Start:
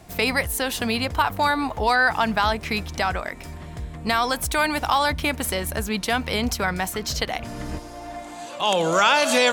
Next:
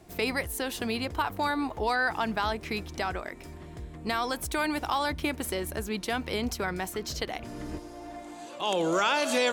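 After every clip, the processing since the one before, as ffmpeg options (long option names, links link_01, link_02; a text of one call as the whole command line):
ffmpeg -i in.wav -af "equalizer=frequency=350:width=2.3:gain=9,volume=-8.5dB" out.wav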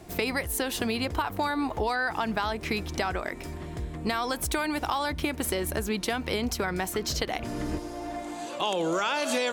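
ffmpeg -i in.wav -af "acompressor=threshold=-31dB:ratio=6,volume=6.5dB" out.wav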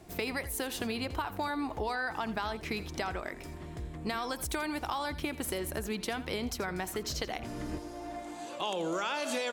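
ffmpeg -i in.wav -af "aecho=1:1:83:0.168,volume=-6dB" out.wav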